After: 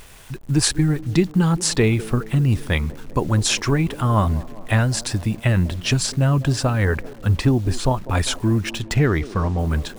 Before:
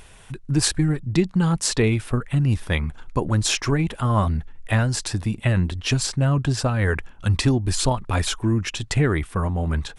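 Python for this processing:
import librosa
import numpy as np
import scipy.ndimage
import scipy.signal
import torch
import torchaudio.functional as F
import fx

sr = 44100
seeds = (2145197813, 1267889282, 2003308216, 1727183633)

y = fx.high_shelf(x, sr, hz=3100.0, db=-11.0, at=(6.85, 8.15))
y = fx.quant_dither(y, sr, seeds[0], bits=8, dither='none')
y = fx.echo_wet_bandpass(y, sr, ms=198, feedback_pct=66, hz=410.0, wet_db=-15.0)
y = fx.resample_linear(y, sr, factor=3, at=(8.66, 9.59))
y = F.gain(torch.from_numpy(y), 2.0).numpy()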